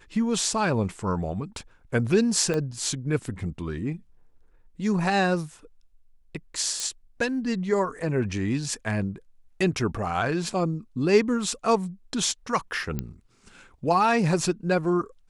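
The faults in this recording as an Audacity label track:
2.540000	2.540000	pop -15 dBFS
6.800000	6.800000	pop -15 dBFS
12.990000	12.990000	pop -16 dBFS

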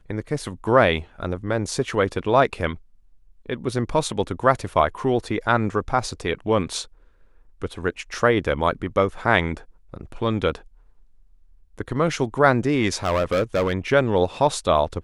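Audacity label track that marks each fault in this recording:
13.040000	13.740000	clipped -16.5 dBFS

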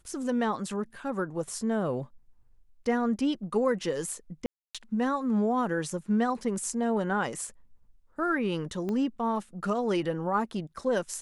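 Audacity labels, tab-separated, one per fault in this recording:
4.460000	4.750000	dropout 286 ms
8.890000	8.890000	pop -22 dBFS

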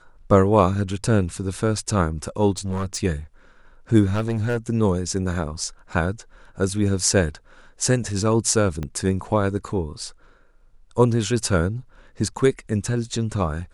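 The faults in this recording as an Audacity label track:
2.580000	2.980000	clipped -21.5 dBFS
4.050000	4.570000	clipped -18 dBFS
8.830000	8.830000	pop -17 dBFS

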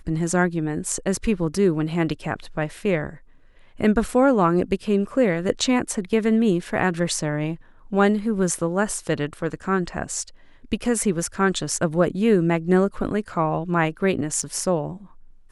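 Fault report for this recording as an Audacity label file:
14.420000	14.430000	dropout 6 ms

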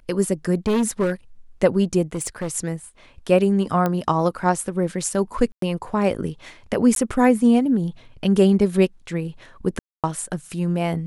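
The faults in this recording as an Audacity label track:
0.670000	1.120000	clipped -16 dBFS
2.130000	2.530000	clipped -21.5 dBFS
3.860000	3.860000	pop -10 dBFS
5.520000	5.620000	dropout 103 ms
6.950000	6.960000	dropout
9.790000	10.040000	dropout 247 ms

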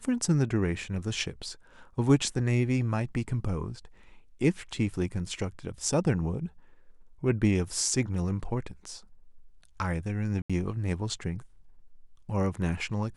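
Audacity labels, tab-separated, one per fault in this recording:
10.420000	10.500000	dropout 76 ms

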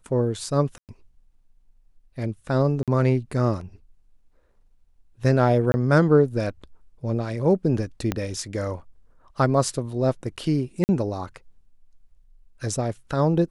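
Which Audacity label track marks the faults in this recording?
0.780000	0.890000	dropout 108 ms
2.830000	2.880000	dropout 47 ms
5.720000	5.740000	dropout 20 ms
8.120000	8.120000	pop -10 dBFS
10.840000	10.890000	dropout 49 ms

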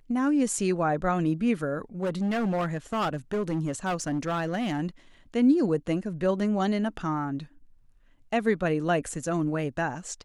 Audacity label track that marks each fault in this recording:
2.030000	4.800000	clipped -23.5 dBFS

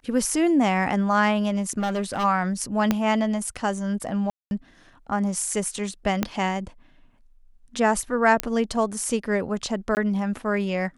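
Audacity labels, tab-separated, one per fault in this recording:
1.790000	2.250000	clipped -21.5 dBFS
2.910000	2.910000	pop -7 dBFS
4.300000	4.510000	dropout 211 ms
6.230000	6.230000	pop -8 dBFS
8.400000	8.400000	pop -6 dBFS
9.950000	9.970000	dropout 19 ms

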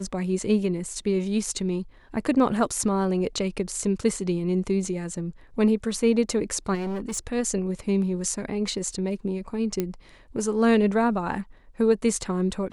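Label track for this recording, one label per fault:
6.740000	7.190000	clipped -26.5 dBFS
9.800000	9.800000	pop -12 dBFS

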